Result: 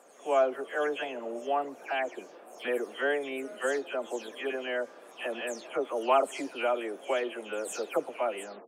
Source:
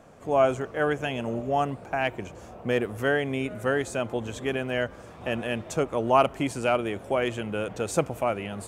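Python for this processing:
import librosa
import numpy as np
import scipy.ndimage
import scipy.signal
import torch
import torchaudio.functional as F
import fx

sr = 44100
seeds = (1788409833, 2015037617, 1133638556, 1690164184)

y = fx.spec_delay(x, sr, highs='early', ms=231)
y = scipy.signal.sosfilt(scipy.signal.butter(4, 310.0, 'highpass', fs=sr, output='sos'), y)
y = y * 10.0 ** (-3.5 / 20.0)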